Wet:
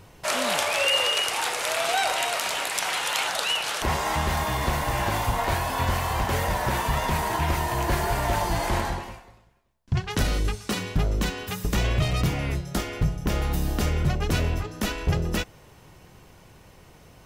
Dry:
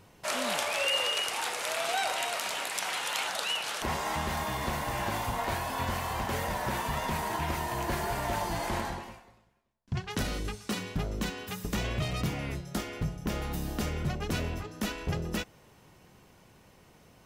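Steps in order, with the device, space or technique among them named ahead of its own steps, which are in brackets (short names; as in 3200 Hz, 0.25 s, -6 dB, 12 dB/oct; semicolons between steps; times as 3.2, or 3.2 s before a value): low shelf boost with a cut just above (low shelf 87 Hz +7.5 dB; bell 220 Hz -4 dB 0.51 oct); gain +6 dB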